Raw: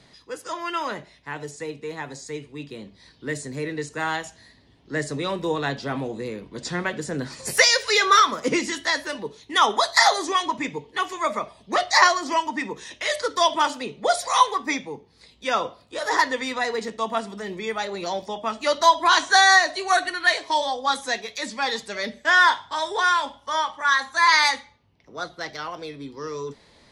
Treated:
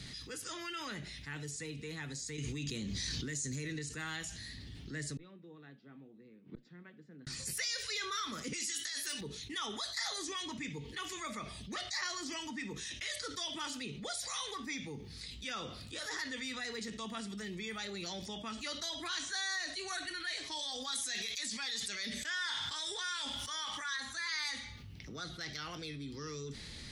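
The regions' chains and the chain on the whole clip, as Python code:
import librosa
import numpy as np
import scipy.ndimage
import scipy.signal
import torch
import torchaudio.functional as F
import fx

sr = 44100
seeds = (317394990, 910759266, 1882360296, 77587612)

y = fx.chain(x, sr, fx.peak_eq(hz=6500.0, db=13.5, octaves=0.34),
    fx.env_flatten(amount_pct=100), at=(2.38, 3.79))
y = fx.chain(y, sr, fx.highpass(hz=170.0, slope=24),
    fx.gate_flip(shuts_db=-29.0, range_db=-38),
    fx.spacing_loss(db_at_10k=43), at=(5.17, 7.27))
y = fx.chain(y, sr, fx.riaa(side='recording'),
    fx.over_compress(threshold_db=-26.0, ratio=-1.0), at=(8.53, 9.21))
y = fx.chain(y, sr, fx.tilt_eq(slope=2.0),
    fx.sustainer(db_per_s=51.0), at=(20.59, 23.97))
y = fx.tone_stack(y, sr, knobs='6-0-2')
y = fx.notch(y, sr, hz=1000.0, q=6.9)
y = fx.env_flatten(y, sr, amount_pct=70)
y = y * librosa.db_to_amplitude(-4.0)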